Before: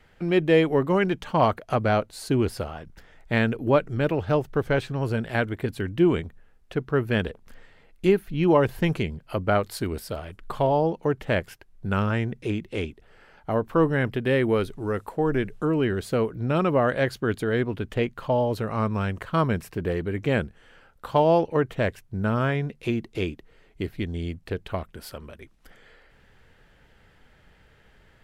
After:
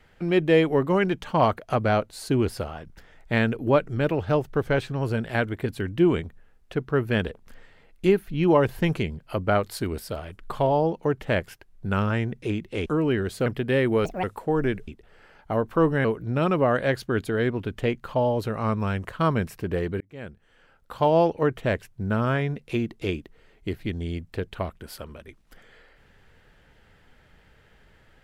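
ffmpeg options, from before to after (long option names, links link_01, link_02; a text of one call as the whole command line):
ffmpeg -i in.wav -filter_complex "[0:a]asplit=8[link_01][link_02][link_03][link_04][link_05][link_06][link_07][link_08];[link_01]atrim=end=12.862[link_09];[link_02]atrim=start=15.578:end=16.182[link_10];[link_03]atrim=start=14.028:end=14.624[link_11];[link_04]atrim=start=14.62:end=14.94,asetpts=PTS-STARTPTS,asetrate=76293,aresample=44100,atrim=end_sample=8157,asetpts=PTS-STARTPTS[link_12];[link_05]atrim=start=14.936:end=15.582[link_13];[link_06]atrim=start=12.858:end=14.032[link_14];[link_07]atrim=start=16.178:end=20.14,asetpts=PTS-STARTPTS,afade=type=out:start_time=3.958:duration=0.004:curve=hsin[link_15];[link_08]atrim=start=20.14,asetpts=PTS-STARTPTS,afade=type=in:duration=1.16[link_16];[link_09][link_10]acrossfade=duration=0.004:curve1=hsin:curve2=hsin[link_17];[link_17][link_11]acrossfade=duration=0.004:curve1=hsin:curve2=hsin[link_18];[link_18][link_12]acrossfade=duration=0.004:curve1=hsin:curve2=hsin[link_19];[link_19][link_13]acrossfade=duration=0.004:curve1=hsin:curve2=hsin[link_20];[link_20][link_14]acrossfade=duration=0.004:curve1=hsin:curve2=hsin[link_21];[link_15][link_16]concat=n=2:v=0:a=1[link_22];[link_21][link_22]acrossfade=duration=0.004:curve1=hsin:curve2=hsin" out.wav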